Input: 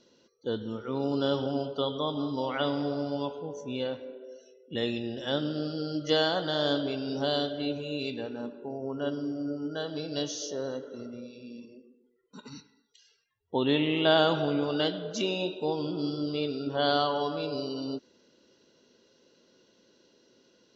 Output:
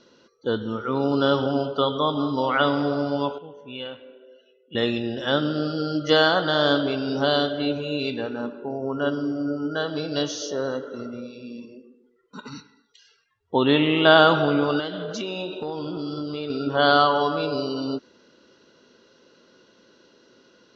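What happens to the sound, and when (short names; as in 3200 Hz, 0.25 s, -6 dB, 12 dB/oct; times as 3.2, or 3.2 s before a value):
3.38–4.75 ladder low-pass 3400 Hz, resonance 65%
14.79–16.5 compressor, threshold -33 dBFS
whole clip: LPF 5700 Hz 12 dB/oct; bell 1300 Hz +8 dB 0.7 oct; gain +6.5 dB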